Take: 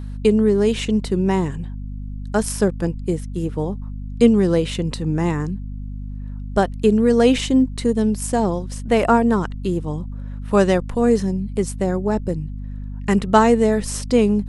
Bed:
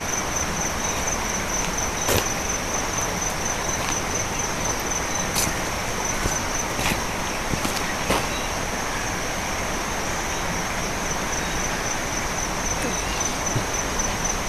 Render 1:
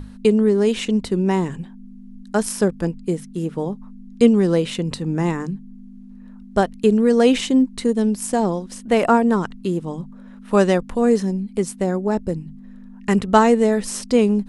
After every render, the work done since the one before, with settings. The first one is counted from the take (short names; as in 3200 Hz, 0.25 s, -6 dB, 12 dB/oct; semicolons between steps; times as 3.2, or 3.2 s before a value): notches 50/100/150 Hz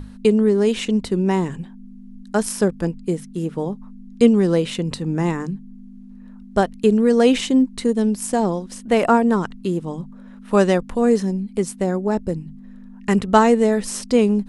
nothing audible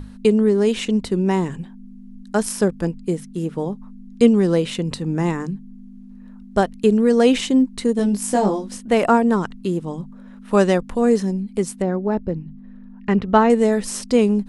7.97–8.77 doubler 20 ms -2.5 dB; 11.82–13.5 air absorption 220 m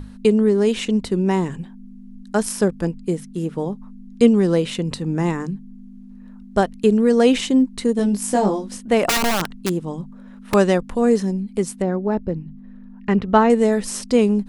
9.09–10.54 wrapped overs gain 13.5 dB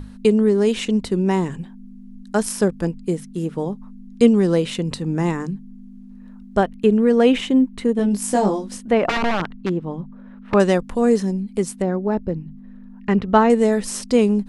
6.57–8.11 band shelf 6700 Hz -9 dB; 8.91–10.6 LPF 2600 Hz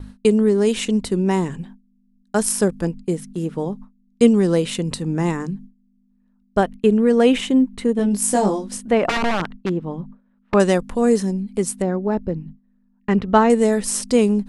gate with hold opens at -27 dBFS; dynamic EQ 9600 Hz, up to +7 dB, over -46 dBFS, Q 0.9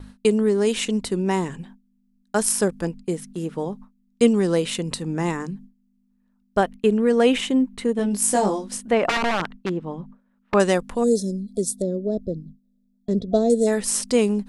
11.04–13.67 spectral gain 710–3300 Hz -26 dB; low shelf 350 Hz -6 dB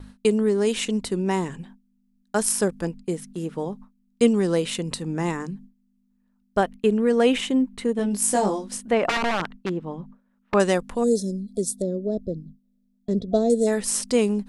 gain -1.5 dB